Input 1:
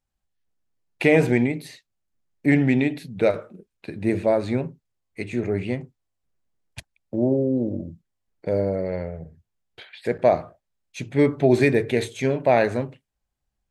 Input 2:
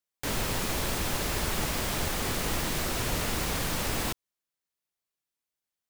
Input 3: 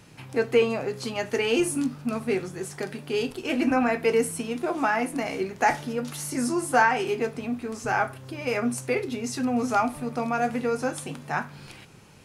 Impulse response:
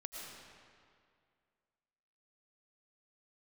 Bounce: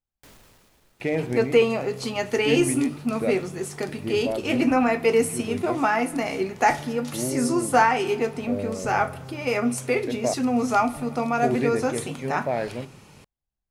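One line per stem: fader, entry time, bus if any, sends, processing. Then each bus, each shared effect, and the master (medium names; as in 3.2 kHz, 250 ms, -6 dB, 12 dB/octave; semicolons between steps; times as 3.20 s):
-8.0 dB, 0.00 s, muted 10.34–11.37 s, no send, treble shelf 2 kHz -5.5 dB; hard clipper -7 dBFS, distortion -38 dB
-13.5 dB, 0.00 s, send -19 dB, peak limiter -22 dBFS, peak gain reduction 5.5 dB; hard clipper -30.5 dBFS, distortion -11 dB; auto duck -24 dB, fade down 0.80 s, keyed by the first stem
+2.0 dB, 1.00 s, send -17.5 dB, band-stop 1.6 kHz, Q 11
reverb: on, RT60 2.2 s, pre-delay 70 ms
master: none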